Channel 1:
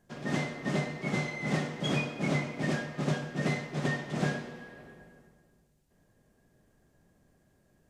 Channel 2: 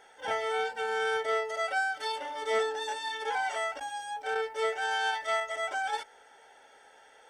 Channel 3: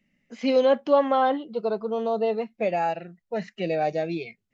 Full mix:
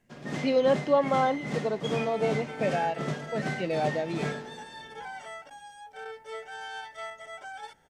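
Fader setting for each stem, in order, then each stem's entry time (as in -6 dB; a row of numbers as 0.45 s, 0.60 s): -3.0 dB, -9.5 dB, -3.5 dB; 0.00 s, 1.70 s, 0.00 s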